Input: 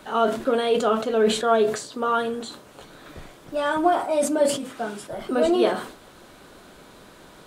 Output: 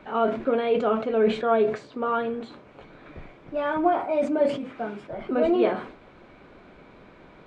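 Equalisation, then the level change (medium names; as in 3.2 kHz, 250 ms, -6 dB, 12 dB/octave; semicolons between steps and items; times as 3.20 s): tape spacing loss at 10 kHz 33 dB; peaking EQ 2.3 kHz +10 dB 0.32 oct; 0.0 dB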